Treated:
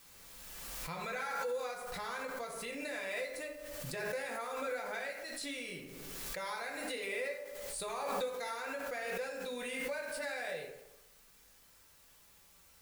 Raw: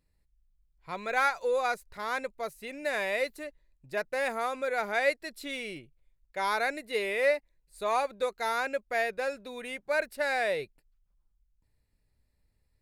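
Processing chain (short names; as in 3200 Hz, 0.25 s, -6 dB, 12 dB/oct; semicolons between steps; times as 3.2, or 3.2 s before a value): steep low-pass 11000 Hz 96 dB/oct; high shelf 3200 Hz +10 dB; compressor 10:1, threshold -36 dBFS, peak gain reduction 17 dB; requantised 10-bit, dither triangular; reverb RT60 1.0 s, pre-delay 3 ms, DRR -1.5 dB; backwards sustainer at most 22 dB/s; gain -5.5 dB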